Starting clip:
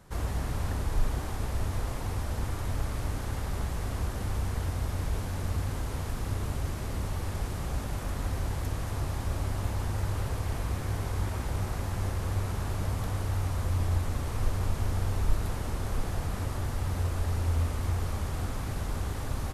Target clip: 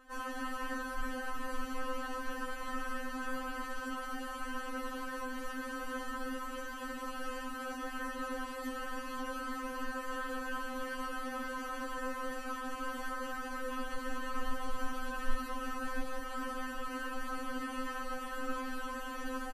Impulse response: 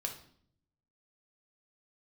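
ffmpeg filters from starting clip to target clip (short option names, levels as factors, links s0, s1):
-filter_complex "[0:a]acrossover=split=400 2400:gain=0.224 1 0.251[s0][s1][s2];[s0][s1][s2]amix=inputs=3:normalize=0,aecho=1:1:3.2:0.66,afftfilt=real='re*3.46*eq(mod(b,12),0)':imag='im*3.46*eq(mod(b,12),0)':win_size=2048:overlap=0.75,volume=1.78"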